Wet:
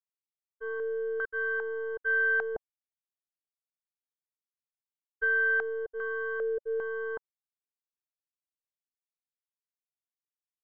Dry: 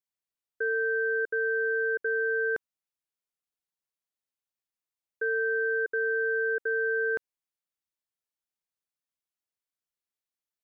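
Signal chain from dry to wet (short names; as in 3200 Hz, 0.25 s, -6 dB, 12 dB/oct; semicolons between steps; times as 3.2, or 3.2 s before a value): tracing distortion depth 0.041 ms; 2.55–5.24 low shelf 350 Hz +6.5 dB; expander -21 dBFS; stepped low-pass 2.5 Hz 570–1500 Hz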